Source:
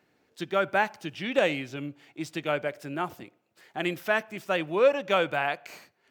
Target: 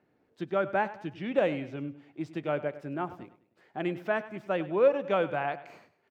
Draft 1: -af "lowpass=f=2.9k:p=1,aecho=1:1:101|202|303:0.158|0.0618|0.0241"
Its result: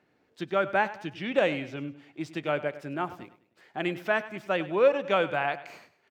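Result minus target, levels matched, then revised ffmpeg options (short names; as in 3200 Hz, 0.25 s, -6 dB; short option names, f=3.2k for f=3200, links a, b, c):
4000 Hz band +6.0 dB
-af "lowpass=f=870:p=1,aecho=1:1:101|202|303:0.158|0.0618|0.0241"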